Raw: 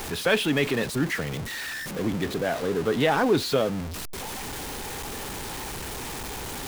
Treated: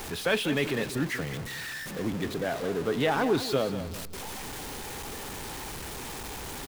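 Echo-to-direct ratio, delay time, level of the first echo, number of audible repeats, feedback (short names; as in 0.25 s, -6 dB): -11.5 dB, 0.19 s, -12.0 dB, 3, 32%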